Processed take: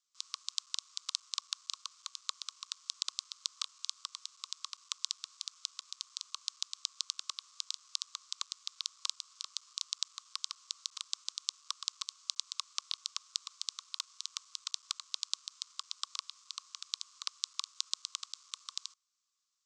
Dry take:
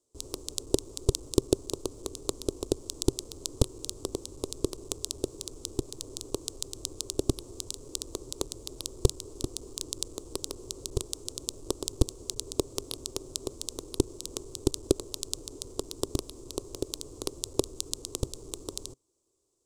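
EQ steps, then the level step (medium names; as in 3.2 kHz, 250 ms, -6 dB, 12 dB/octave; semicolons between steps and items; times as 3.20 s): steep high-pass 1.1 kHz 96 dB/octave; low-pass 5.8 kHz 24 dB/octave; +2.5 dB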